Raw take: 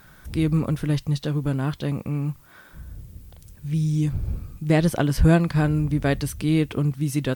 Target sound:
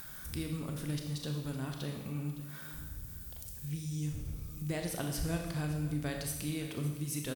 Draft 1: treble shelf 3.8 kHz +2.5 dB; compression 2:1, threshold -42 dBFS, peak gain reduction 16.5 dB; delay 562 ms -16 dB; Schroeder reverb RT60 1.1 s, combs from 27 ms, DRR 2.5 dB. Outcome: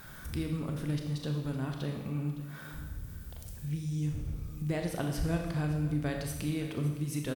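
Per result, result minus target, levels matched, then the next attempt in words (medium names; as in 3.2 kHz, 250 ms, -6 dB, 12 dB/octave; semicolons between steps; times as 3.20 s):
8 kHz band -7.5 dB; compression: peak gain reduction -4 dB
treble shelf 3.8 kHz +13.5 dB; compression 2:1, threshold -42 dBFS, peak gain reduction 16.5 dB; delay 562 ms -16 dB; Schroeder reverb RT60 1.1 s, combs from 27 ms, DRR 2.5 dB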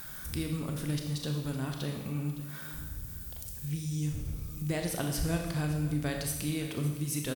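compression: peak gain reduction -3.5 dB
treble shelf 3.8 kHz +13.5 dB; compression 2:1, threshold -49.5 dBFS, peak gain reduction 20 dB; delay 562 ms -16 dB; Schroeder reverb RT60 1.1 s, combs from 27 ms, DRR 2.5 dB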